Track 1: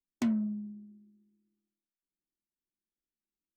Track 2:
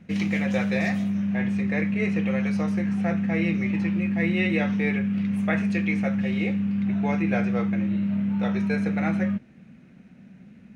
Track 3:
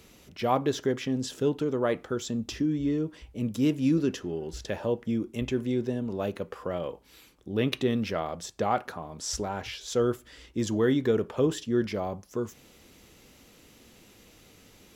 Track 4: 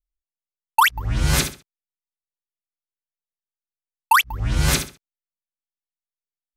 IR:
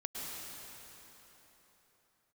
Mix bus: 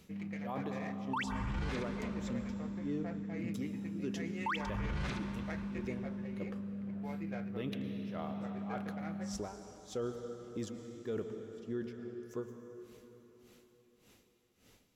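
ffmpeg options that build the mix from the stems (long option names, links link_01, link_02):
-filter_complex "[0:a]highpass=frequency=310:width=0.5412,highpass=frequency=310:width=1.3066,adelay=1800,volume=-5dB[link_01];[1:a]adynamicsmooth=sensitivity=1.5:basefreq=1300,volume=-16.5dB[link_02];[2:a]aeval=exprs='val(0)*pow(10,-33*(0.5-0.5*cos(2*PI*1.7*n/s))/20)':channel_layout=same,volume=-10dB,asplit=2[link_03][link_04];[link_04]volume=-5.5dB[link_05];[3:a]lowpass=2800,adelay=350,volume=-15dB,asplit=2[link_06][link_07];[link_07]volume=-10dB[link_08];[4:a]atrim=start_sample=2205[link_09];[link_05][link_08]amix=inputs=2:normalize=0[link_10];[link_10][link_09]afir=irnorm=-1:irlink=0[link_11];[link_01][link_02][link_03][link_06][link_11]amix=inputs=5:normalize=0,alimiter=level_in=5dB:limit=-24dB:level=0:latency=1:release=17,volume=-5dB"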